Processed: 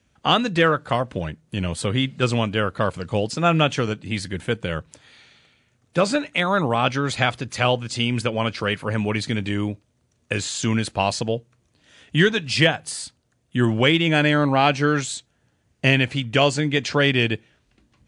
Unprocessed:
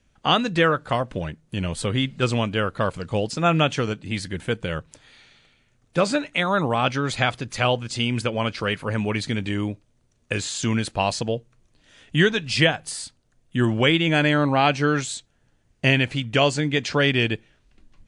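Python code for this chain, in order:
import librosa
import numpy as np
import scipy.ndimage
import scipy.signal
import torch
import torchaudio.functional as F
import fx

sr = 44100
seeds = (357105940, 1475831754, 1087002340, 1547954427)

p1 = scipy.signal.sosfilt(scipy.signal.butter(4, 56.0, 'highpass', fs=sr, output='sos'), x)
p2 = fx.clip_asym(p1, sr, top_db=-15.5, bottom_db=-7.0)
p3 = p1 + (p2 * librosa.db_to_amplitude(-10.5))
y = p3 * librosa.db_to_amplitude(-1.0)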